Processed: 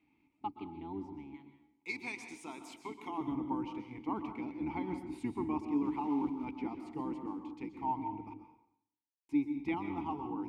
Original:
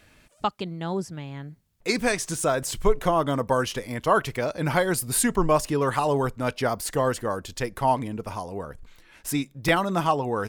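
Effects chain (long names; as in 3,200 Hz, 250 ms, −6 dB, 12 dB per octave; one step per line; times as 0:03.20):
sub-octave generator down 1 octave, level +3 dB
0:01.34–0:03.18: spectral tilt +4.5 dB per octave
0:05.84–0:06.45: floating-point word with a short mantissa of 2 bits
formant filter u
high-shelf EQ 6,000 Hz −6 dB
0:08.34–0:09.29: silence
dense smooth reverb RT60 0.73 s, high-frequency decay 0.85×, pre-delay 110 ms, DRR 7.5 dB
level −3 dB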